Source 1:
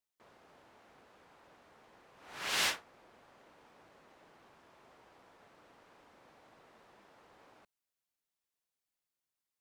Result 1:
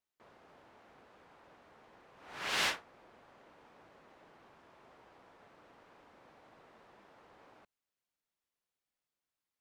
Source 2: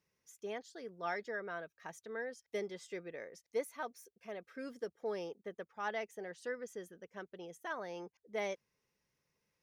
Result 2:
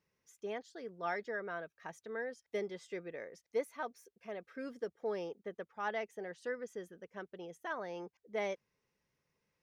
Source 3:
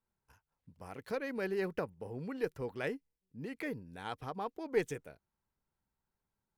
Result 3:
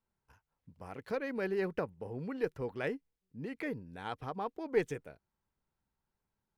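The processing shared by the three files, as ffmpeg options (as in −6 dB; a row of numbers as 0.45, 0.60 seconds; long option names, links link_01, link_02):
-af "highshelf=frequency=5200:gain=-8.5,volume=1.5dB"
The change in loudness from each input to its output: −0.5, +1.0, +1.5 LU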